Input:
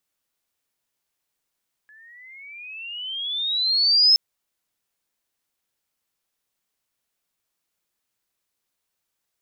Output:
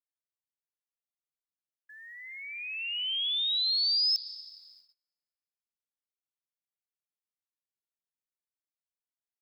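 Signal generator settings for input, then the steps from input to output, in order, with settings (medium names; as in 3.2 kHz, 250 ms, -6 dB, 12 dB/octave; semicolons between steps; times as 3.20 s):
gliding synth tone sine, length 2.27 s, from 1.7 kHz, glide +19.5 st, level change +36.5 dB, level -11 dB
compression 3:1, threshold -29 dBFS; plate-style reverb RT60 4.5 s, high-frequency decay 0.4×, pre-delay 105 ms, DRR 12 dB; gate -58 dBFS, range -26 dB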